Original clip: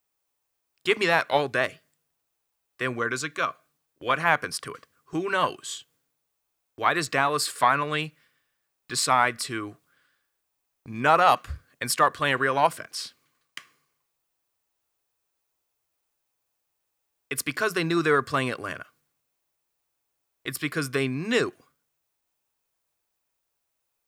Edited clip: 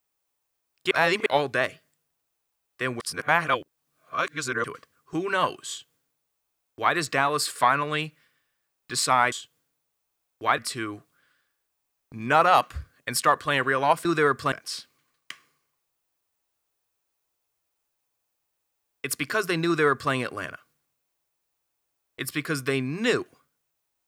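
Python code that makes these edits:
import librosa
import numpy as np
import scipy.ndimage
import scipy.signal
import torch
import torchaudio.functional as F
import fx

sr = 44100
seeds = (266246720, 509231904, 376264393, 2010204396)

y = fx.edit(x, sr, fx.reverse_span(start_s=0.91, length_s=0.35),
    fx.reverse_span(start_s=3.0, length_s=1.64),
    fx.duplicate(start_s=5.69, length_s=1.26, to_s=9.32),
    fx.duplicate(start_s=17.93, length_s=0.47, to_s=12.79), tone=tone)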